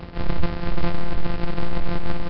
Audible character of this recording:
a buzz of ramps at a fixed pitch in blocks of 256 samples
tremolo triangle 6.3 Hz, depth 45%
a quantiser's noise floor 8 bits, dither none
Nellymoser

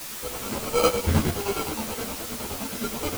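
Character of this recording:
aliases and images of a low sample rate 1,800 Hz, jitter 0%
chopped level 9.6 Hz, depth 60%, duty 55%
a quantiser's noise floor 6 bits, dither triangular
a shimmering, thickened sound

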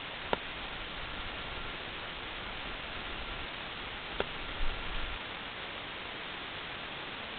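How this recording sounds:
a buzz of ramps at a fixed pitch in blocks of 32 samples
tremolo saw up 0.58 Hz, depth 80%
a quantiser's noise floor 6 bits, dither triangular
G.726

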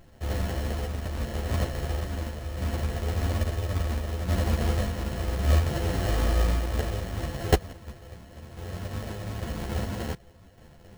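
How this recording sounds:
a buzz of ramps at a fixed pitch in blocks of 64 samples
sample-and-hold tremolo
aliases and images of a low sample rate 1,200 Hz, jitter 0%
a shimmering, thickened sound

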